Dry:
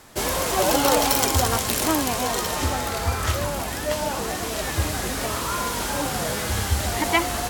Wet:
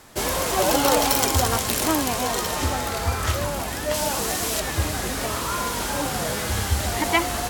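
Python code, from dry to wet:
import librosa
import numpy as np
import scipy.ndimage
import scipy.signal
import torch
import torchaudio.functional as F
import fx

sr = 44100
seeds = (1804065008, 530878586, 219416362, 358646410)

y = fx.high_shelf(x, sr, hz=3700.0, db=8.0, at=(3.94, 4.6))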